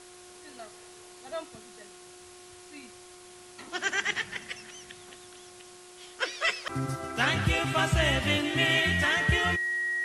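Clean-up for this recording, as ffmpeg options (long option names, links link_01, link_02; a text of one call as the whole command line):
ffmpeg -i in.wav -af "adeclick=threshold=4,bandreject=frequency=360:width_type=h:width=4,bandreject=frequency=720:width_type=h:width=4,bandreject=frequency=1080:width_type=h:width=4,bandreject=frequency=1440:width_type=h:width=4,bandreject=frequency=1900:width=30,afftdn=noise_reduction=24:noise_floor=-50" out.wav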